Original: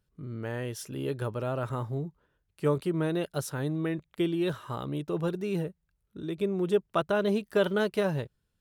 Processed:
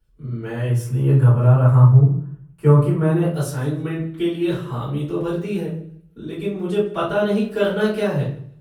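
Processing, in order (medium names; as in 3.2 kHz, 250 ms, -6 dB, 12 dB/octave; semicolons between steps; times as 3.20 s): 0.67–3.27 s: graphic EQ 125/1000/4000 Hz +10/+7/-11 dB; thinning echo 157 ms, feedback 26%, high-pass 180 Hz, level -21 dB; simulated room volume 36 m³, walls mixed, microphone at 2.9 m; trim -7.5 dB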